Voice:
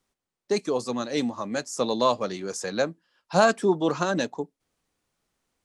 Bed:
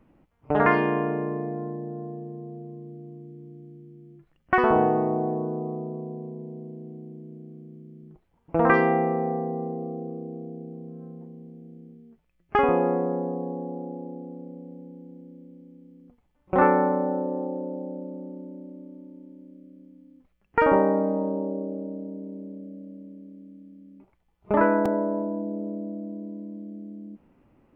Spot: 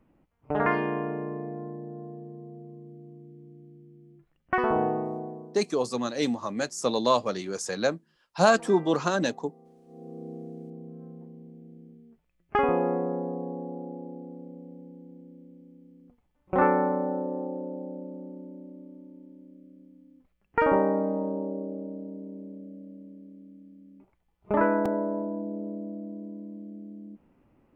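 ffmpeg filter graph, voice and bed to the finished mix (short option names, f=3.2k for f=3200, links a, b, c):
-filter_complex "[0:a]adelay=5050,volume=-0.5dB[a];[1:a]volume=16.5dB,afade=t=out:st=4.87:d=0.75:silence=0.105925,afade=t=in:st=9.86:d=0.43:silence=0.0841395[b];[a][b]amix=inputs=2:normalize=0"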